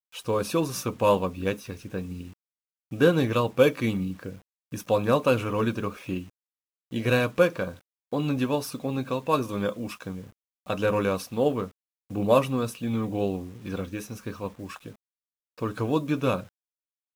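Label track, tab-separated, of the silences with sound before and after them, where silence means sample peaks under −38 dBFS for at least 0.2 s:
2.300000	2.920000	silence
4.360000	4.720000	silence
6.230000	6.920000	silence
7.740000	8.130000	silence
10.270000	10.670000	silence
11.680000	12.110000	silence
14.910000	15.580000	silence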